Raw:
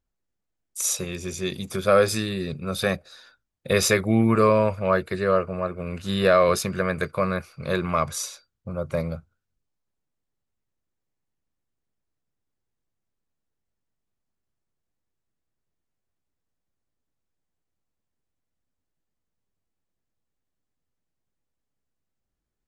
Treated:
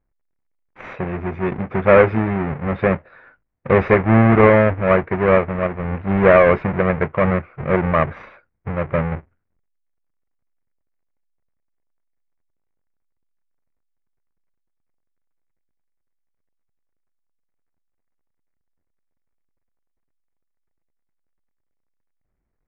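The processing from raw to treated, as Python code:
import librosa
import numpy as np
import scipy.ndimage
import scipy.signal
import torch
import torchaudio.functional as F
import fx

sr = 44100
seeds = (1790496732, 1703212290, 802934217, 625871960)

y = fx.halfwave_hold(x, sr)
y = scipy.signal.sosfilt(scipy.signal.cheby1(4, 1.0, 2200.0, 'lowpass', fs=sr, output='sos'), y)
y = F.gain(torch.from_numpy(y), 3.5).numpy()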